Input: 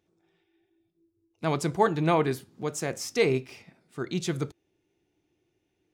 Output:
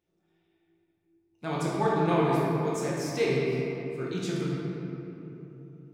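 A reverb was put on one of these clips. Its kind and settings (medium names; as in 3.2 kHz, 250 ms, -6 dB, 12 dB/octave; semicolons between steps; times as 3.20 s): simulated room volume 160 m³, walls hard, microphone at 0.9 m; trim -8 dB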